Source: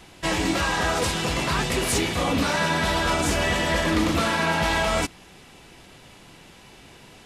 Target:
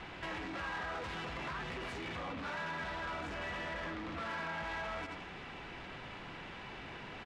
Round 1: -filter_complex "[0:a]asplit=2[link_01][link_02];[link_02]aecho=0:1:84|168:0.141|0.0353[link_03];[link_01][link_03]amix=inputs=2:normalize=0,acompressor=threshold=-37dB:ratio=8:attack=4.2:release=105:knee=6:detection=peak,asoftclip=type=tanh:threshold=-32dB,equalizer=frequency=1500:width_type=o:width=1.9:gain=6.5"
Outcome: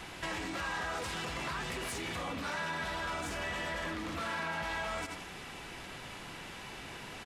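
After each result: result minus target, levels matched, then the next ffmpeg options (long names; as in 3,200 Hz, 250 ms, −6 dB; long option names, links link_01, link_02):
soft clipping: distortion −9 dB; 4,000 Hz band +2.0 dB
-filter_complex "[0:a]asplit=2[link_01][link_02];[link_02]aecho=0:1:84|168:0.141|0.0353[link_03];[link_01][link_03]amix=inputs=2:normalize=0,acompressor=threshold=-37dB:ratio=8:attack=4.2:release=105:knee=6:detection=peak,asoftclip=type=tanh:threshold=-40dB,equalizer=frequency=1500:width_type=o:width=1.9:gain=6.5"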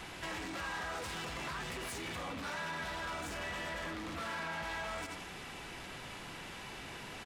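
4,000 Hz band +2.5 dB
-filter_complex "[0:a]asplit=2[link_01][link_02];[link_02]aecho=0:1:84|168:0.141|0.0353[link_03];[link_01][link_03]amix=inputs=2:normalize=0,acompressor=threshold=-37dB:ratio=8:attack=4.2:release=105:knee=6:detection=peak,lowpass=3100,asoftclip=type=tanh:threshold=-40dB,equalizer=frequency=1500:width_type=o:width=1.9:gain=6.5"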